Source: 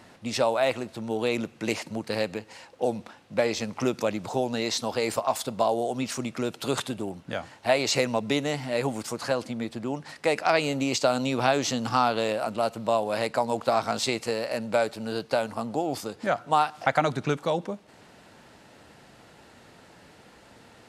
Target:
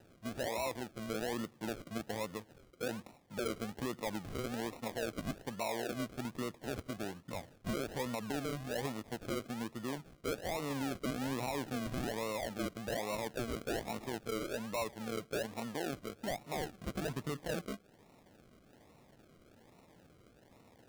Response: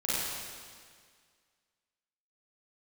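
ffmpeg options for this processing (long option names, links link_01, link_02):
-af "lowpass=frequency=1500:poles=1,aemphasis=mode=reproduction:type=50fm,acrusher=samples=39:mix=1:aa=0.000001:lfo=1:lforange=23.4:lforate=1.2,alimiter=limit=-21.5dB:level=0:latency=1:release=26,volume=-8.5dB"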